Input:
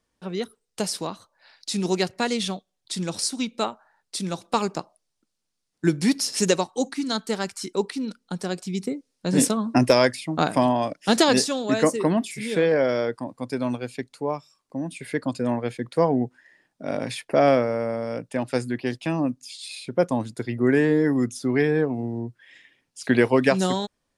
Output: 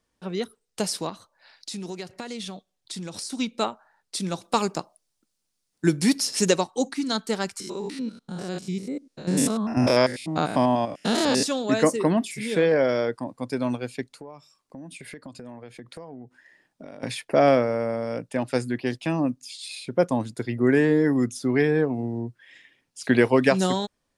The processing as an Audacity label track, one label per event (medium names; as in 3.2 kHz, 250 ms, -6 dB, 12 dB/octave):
1.090000	3.300000	compression, threshold -31 dBFS
4.430000	6.200000	treble shelf 7.5 kHz +8 dB
7.600000	11.430000	spectrogram pixelated in time every 100 ms
14.090000	17.030000	compression 10:1, threshold -37 dBFS